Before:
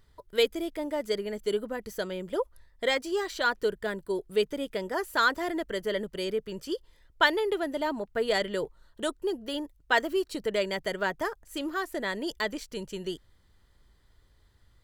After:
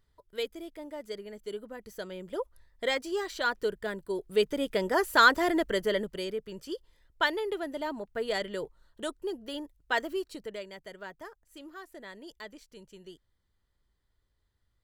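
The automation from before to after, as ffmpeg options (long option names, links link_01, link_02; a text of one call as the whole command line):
ffmpeg -i in.wav -af "volume=4.5dB,afade=type=in:start_time=1.61:duration=1.28:silence=0.446684,afade=type=in:start_time=4.15:duration=0.73:silence=0.446684,afade=type=out:start_time=5.63:duration=0.69:silence=0.354813,afade=type=out:start_time=10.11:duration=0.54:silence=0.334965" out.wav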